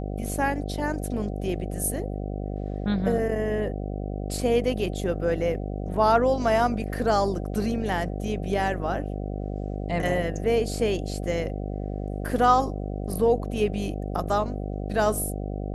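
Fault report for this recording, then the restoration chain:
buzz 50 Hz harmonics 15 -31 dBFS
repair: de-hum 50 Hz, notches 15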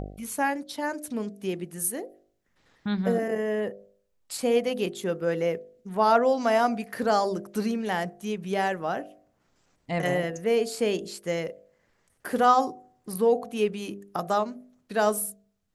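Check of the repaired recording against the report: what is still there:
nothing left

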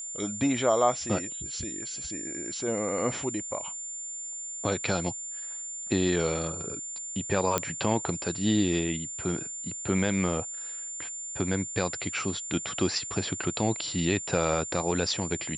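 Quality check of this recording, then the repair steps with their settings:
whine 7.2 kHz -35 dBFS
7.58 s: pop -9 dBFS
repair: de-click; band-stop 7.2 kHz, Q 30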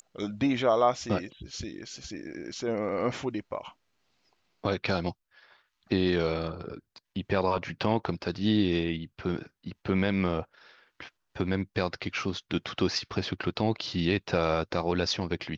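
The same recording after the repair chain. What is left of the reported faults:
nothing left

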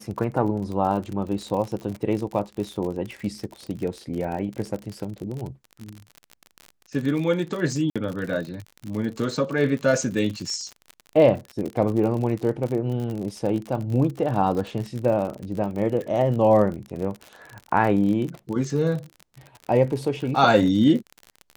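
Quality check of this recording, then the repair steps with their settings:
crackle 50 per s -29 dBFS
7.90–7.96 s: dropout 56 ms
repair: de-click; interpolate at 7.90 s, 56 ms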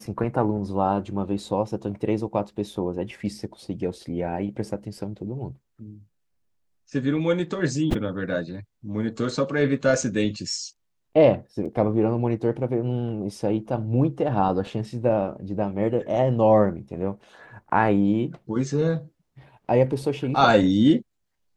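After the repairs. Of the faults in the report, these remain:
nothing left

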